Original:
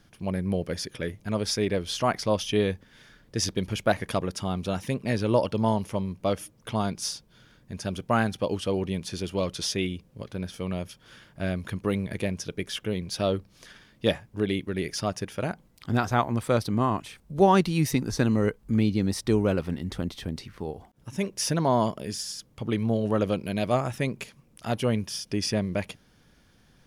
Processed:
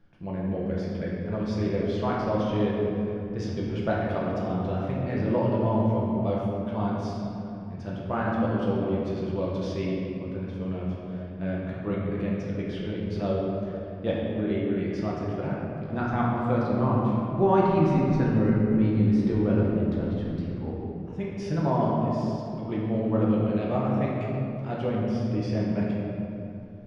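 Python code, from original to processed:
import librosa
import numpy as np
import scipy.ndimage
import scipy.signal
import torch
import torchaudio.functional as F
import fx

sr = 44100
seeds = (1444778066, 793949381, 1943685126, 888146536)

y = fx.spacing_loss(x, sr, db_at_10k=31)
y = fx.room_shoebox(y, sr, seeds[0], volume_m3=120.0, walls='hard', distance_m=0.71)
y = y * librosa.db_to_amplitude(-5.0)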